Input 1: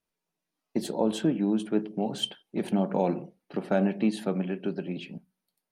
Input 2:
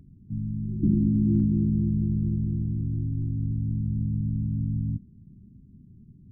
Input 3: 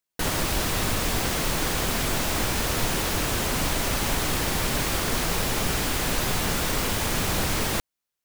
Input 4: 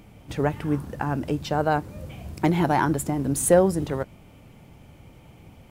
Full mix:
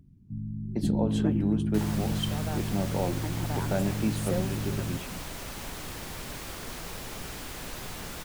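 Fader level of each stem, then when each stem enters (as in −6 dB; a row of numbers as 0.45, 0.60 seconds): −4.5, −5.0, −13.5, −16.5 decibels; 0.00, 0.00, 1.55, 0.80 seconds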